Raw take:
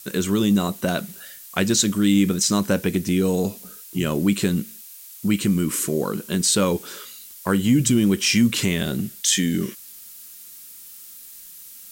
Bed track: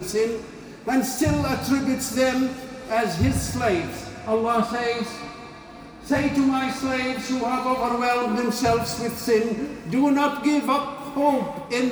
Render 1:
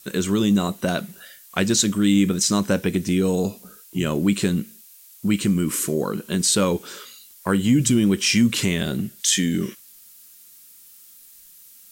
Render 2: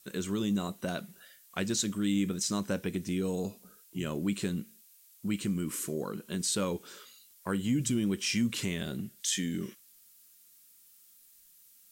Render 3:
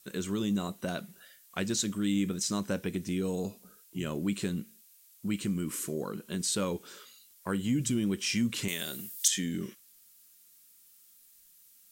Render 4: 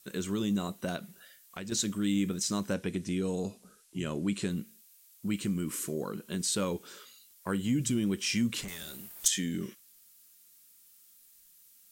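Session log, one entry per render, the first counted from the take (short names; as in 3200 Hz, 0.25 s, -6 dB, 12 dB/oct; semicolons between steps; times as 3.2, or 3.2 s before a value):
noise print and reduce 6 dB
gain -11.5 dB
8.68–9.28 RIAA curve recording
0.96–1.72 compressor 2.5:1, threshold -39 dBFS; 2.74–4.5 LPF 11000 Hz 24 dB/oct; 8.61–9.26 tube stage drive 36 dB, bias 0.75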